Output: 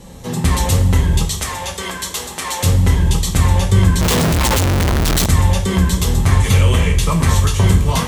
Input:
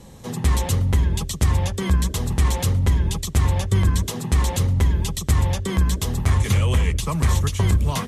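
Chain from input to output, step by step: 1.25–2.63 Bessel high-pass 650 Hz, order 2; two-slope reverb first 0.36 s, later 3.1 s, from -18 dB, DRR 0 dB; 4.01–5.26 Schmitt trigger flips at -36.5 dBFS; gain +4.5 dB

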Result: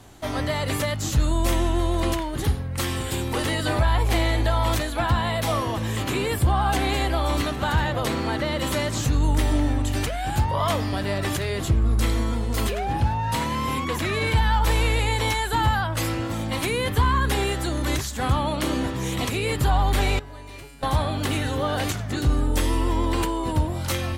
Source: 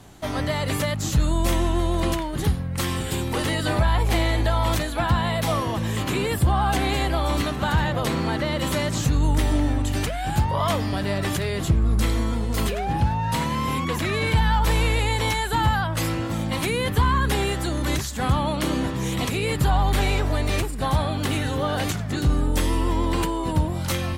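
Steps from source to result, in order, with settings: bell 170 Hz -9 dB 0.33 oct; de-hum 210.4 Hz, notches 31; 20.19–20.83 resonator 140 Hz, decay 1.1 s, harmonics all, mix 90%

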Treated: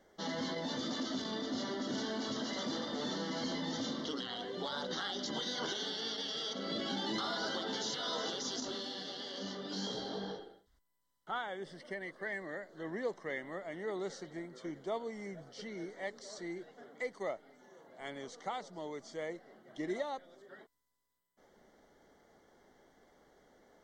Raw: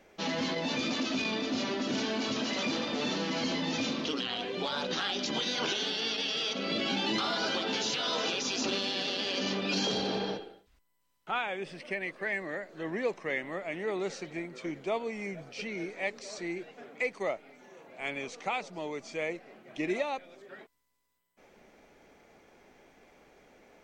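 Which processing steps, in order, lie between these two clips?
Butterworth band-stop 2500 Hz, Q 2.6; 8.6–10.39 detuned doubles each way 21 cents; gain -5.5 dB

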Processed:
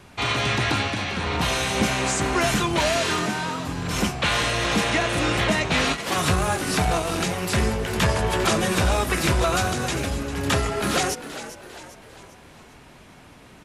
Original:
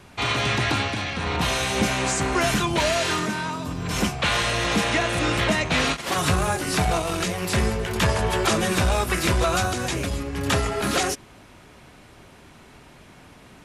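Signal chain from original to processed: frequency-shifting echo 0.399 s, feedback 46%, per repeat +83 Hz, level -13 dB

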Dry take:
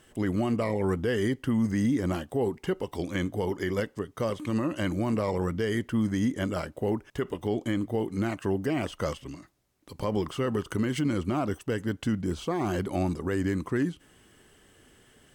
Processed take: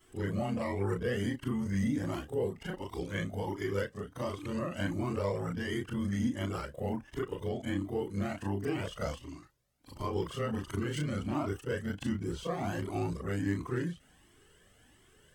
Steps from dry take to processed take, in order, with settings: short-time reversal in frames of 81 ms; cascading flanger rising 1.4 Hz; gain +3 dB

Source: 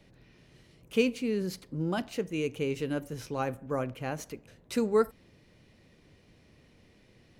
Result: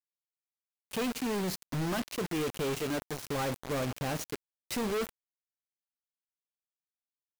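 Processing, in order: 2.79–3.23 low shelf 310 Hz -6 dB; companded quantiser 2-bit; gain -5 dB

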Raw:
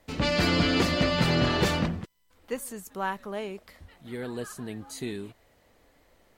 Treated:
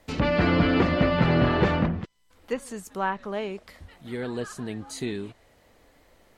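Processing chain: treble ducked by the level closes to 2000 Hz, closed at -24 dBFS; gain +3.5 dB

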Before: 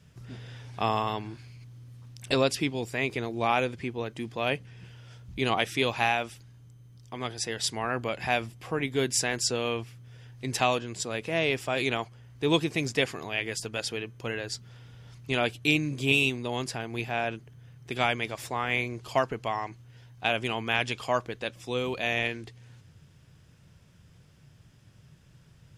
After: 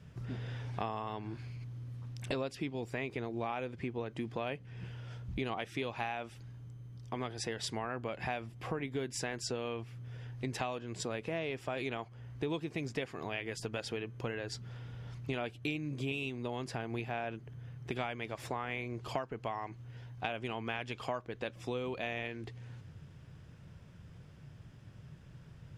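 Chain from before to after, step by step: high shelf 3500 Hz -12 dB; compressor 6:1, threshold -38 dBFS, peak gain reduction 17 dB; gain +3.5 dB

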